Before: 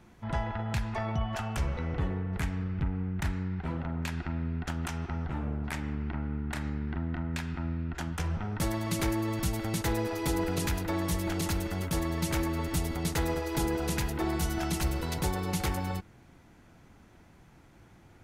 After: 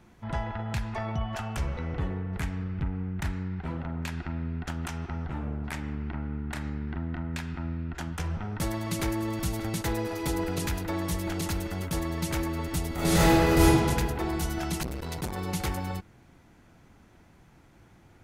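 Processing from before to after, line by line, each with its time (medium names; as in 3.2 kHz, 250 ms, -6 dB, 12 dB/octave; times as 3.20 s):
8.61–9.10 s: echo throw 590 ms, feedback 45%, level -15.5 dB
12.94–13.66 s: reverb throw, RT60 1.9 s, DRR -11 dB
14.83–15.38 s: transformer saturation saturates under 350 Hz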